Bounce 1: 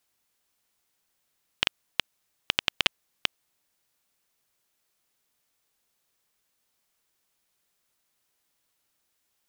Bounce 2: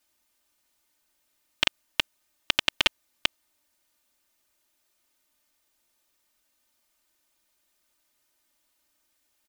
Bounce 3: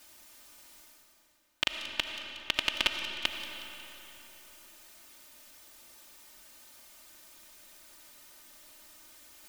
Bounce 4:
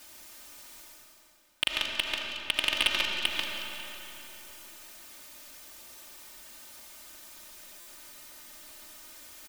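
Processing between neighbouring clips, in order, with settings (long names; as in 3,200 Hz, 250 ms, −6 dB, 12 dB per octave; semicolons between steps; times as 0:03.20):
comb filter 3.3 ms, depth 93%
reversed playback; upward compression, threshold −31 dBFS; reversed playback; delay with a high-pass on its return 182 ms, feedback 53%, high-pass 4,100 Hz, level −10 dB; convolution reverb RT60 3.7 s, pre-delay 35 ms, DRR 4.5 dB; level −5.5 dB
single-tap delay 140 ms −7 dB; hard clipping −16.5 dBFS, distortion −9 dB; buffer that repeats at 0:07.80, samples 256, times 10; level +5 dB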